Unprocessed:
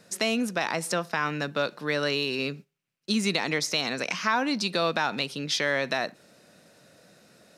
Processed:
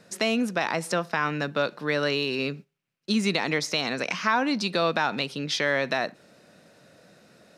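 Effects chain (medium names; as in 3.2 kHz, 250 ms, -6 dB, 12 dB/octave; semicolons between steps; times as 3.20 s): treble shelf 5.3 kHz -7.5 dB; trim +2 dB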